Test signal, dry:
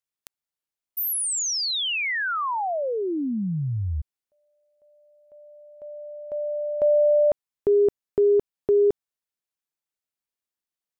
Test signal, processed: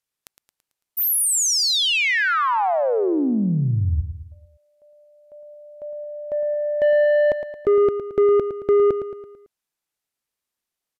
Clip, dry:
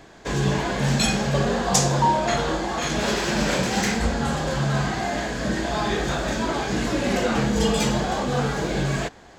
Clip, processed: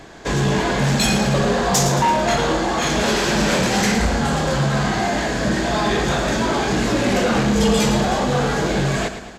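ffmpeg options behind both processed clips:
-filter_complex "[0:a]asoftclip=type=tanh:threshold=0.112,asplit=2[s0][s1];[s1]aecho=0:1:111|222|333|444|555:0.316|0.158|0.0791|0.0395|0.0198[s2];[s0][s2]amix=inputs=2:normalize=0,aresample=32000,aresample=44100,volume=2.11"

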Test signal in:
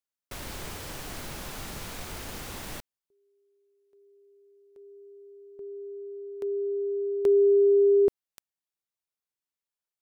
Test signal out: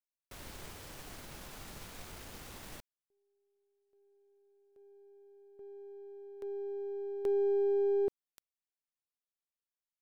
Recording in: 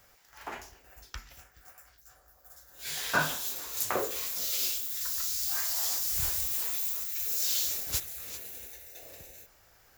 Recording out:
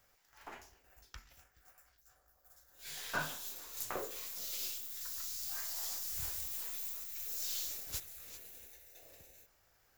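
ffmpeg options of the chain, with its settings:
-af "aeval=exprs='if(lt(val(0),0),0.708*val(0),val(0))':c=same,volume=0.376"

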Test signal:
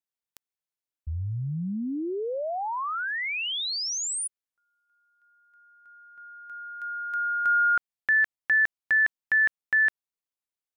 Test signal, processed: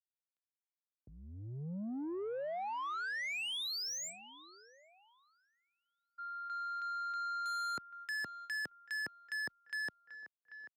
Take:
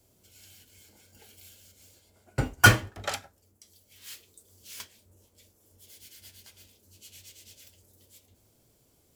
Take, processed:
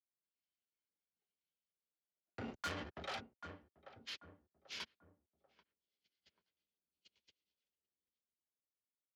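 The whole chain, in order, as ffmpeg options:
-filter_complex "[0:a]agate=range=0.00708:threshold=0.00447:ratio=16:release=57:detection=peak,dynaudnorm=f=520:g=7:m=2.11,lowpass=f=4700:w=0.5412,lowpass=f=4700:w=1.3066,afreqshift=-26,aresample=16000,asoftclip=type=hard:threshold=0.119,aresample=44100,asplit=2[s0][s1];[s1]adelay=788,lowpass=f=1000:p=1,volume=0.0631,asplit=2[s2][s3];[s3]adelay=788,lowpass=f=1000:p=1,volume=0.43,asplit=2[s4][s5];[s5]adelay=788,lowpass=f=1000:p=1,volume=0.43[s6];[s0][s2][s4][s6]amix=inputs=4:normalize=0,areverse,acompressor=threshold=0.0126:ratio=4:attack=0.53:release=46:knee=1:detection=rms,areverse,asoftclip=type=tanh:threshold=0.0141,highpass=140,volume=1.12"

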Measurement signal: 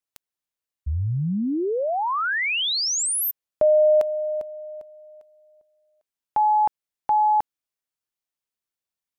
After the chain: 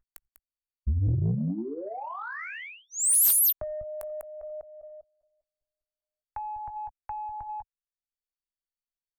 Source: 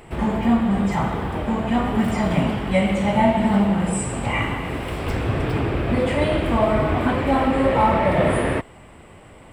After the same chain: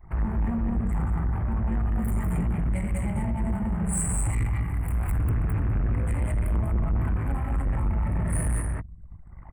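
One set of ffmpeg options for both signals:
-filter_complex "[0:a]asplit=2[s0][s1];[s1]aecho=0:1:61|87|197:0.141|0.224|0.668[s2];[s0][s2]amix=inputs=2:normalize=0,aeval=exprs='val(0)+0.0447*sin(2*PI*4500*n/s)':c=same,equalizer=f=125:t=o:w=1:g=-5,equalizer=f=250:t=o:w=1:g=-10,equalizer=f=500:t=o:w=1:g=-10,equalizer=f=2000:t=o:w=1:g=3,equalizer=f=4000:t=o:w=1:g=-9,equalizer=f=8000:t=o:w=1:g=6,acrossover=split=190|4700[s3][s4][s5];[s4]acompressor=threshold=0.0158:ratio=16:attack=0.18:release=767:knee=1:detection=rms[s6];[s3][s6][s5]amix=inputs=3:normalize=0,asuperstop=centerf=4900:order=4:qfactor=0.53,asplit=2[s7][s8];[s8]adelay=18,volume=0.501[s9];[s7][s9]amix=inputs=2:normalize=0,asoftclip=type=tanh:threshold=0.0398,highshelf=f=3900:g=2.5,acrossover=split=260|4400[s10][s11][s12];[s11]acompressor=threshold=0.00794:ratio=6:attack=27:release=111:knee=2.83:detection=peak[s13];[s10][s13][s12]amix=inputs=3:normalize=0,anlmdn=0.0631,volume=2.37"

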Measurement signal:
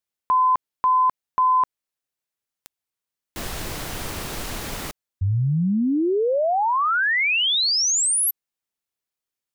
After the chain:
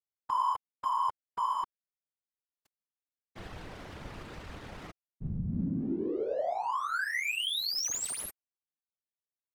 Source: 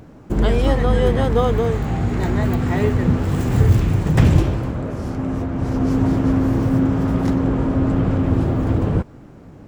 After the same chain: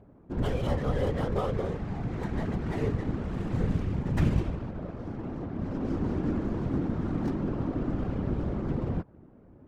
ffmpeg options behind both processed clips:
-af "adynamicsmooth=sensitivity=6:basefreq=1100,afftfilt=real='hypot(re,im)*cos(2*PI*random(0))':imag='hypot(re,im)*sin(2*PI*random(1))':win_size=512:overlap=0.75,volume=0.501"

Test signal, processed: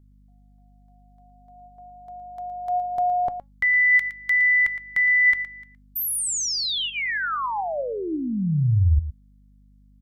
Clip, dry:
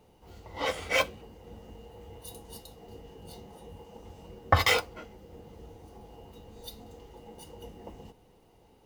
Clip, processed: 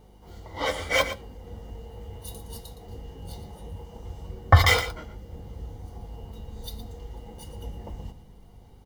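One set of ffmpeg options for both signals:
-af "asubboost=boost=3.5:cutoff=150,aeval=exprs='val(0)+0.00158*(sin(2*PI*50*n/s)+sin(2*PI*2*50*n/s)/2+sin(2*PI*3*50*n/s)/3+sin(2*PI*4*50*n/s)/4+sin(2*PI*5*50*n/s)/5)':c=same,flanger=delay=2.6:depth=2.1:regen=87:speed=0.23:shape=triangular,asuperstop=centerf=2600:order=4:qfactor=7.1,aecho=1:1:115:0.251,volume=2.51"

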